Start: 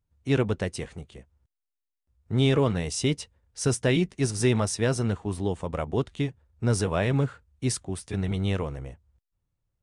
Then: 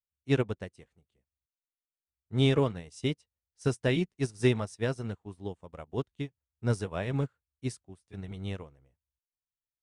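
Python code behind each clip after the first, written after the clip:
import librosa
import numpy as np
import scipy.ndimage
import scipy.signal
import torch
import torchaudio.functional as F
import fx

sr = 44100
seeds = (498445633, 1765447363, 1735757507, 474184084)

y = fx.upward_expand(x, sr, threshold_db=-38.0, expansion=2.5)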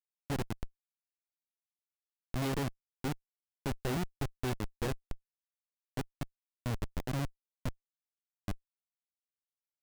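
y = fx.schmitt(x, sr, flips_db=-28.0)
y = F.gain(torch.from_numpy(y), 1.0).numpy()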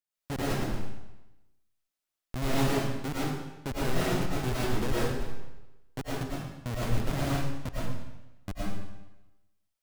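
y = fx.rev_freeverb(x, sr, rt60_s=1.0, hf_ratio=0.95, predelay_ms=70, drr_db=-7.5)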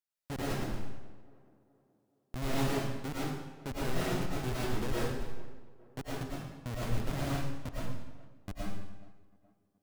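y = fx.echo_tape(x, sr, ms=422, feedback_pct=52, wet_db=-17, lp_hz=1200.0, drive_db=20.0, wow_cents=16)
y = F.gain(torch.from_numpy(y), -4.5).numpy()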